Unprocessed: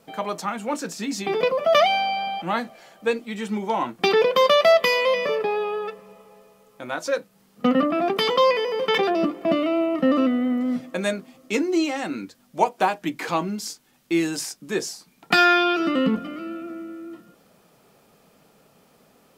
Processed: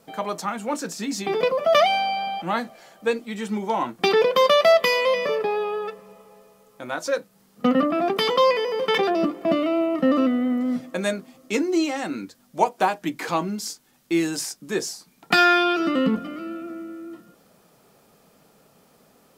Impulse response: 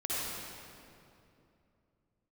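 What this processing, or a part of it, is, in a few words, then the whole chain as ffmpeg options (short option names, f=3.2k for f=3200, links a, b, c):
exciter from parts: -filter_complex "[0:a]asplit=2[a][b];[b]highpass=f=2.4k:w=0.5412,highpass=f=2.4k:w=1.3066,asoftclip=type=tanh:threshold=-27.5dB,volume=-11.5dB[c];[a][c]amix=inputs=2:normalize=0"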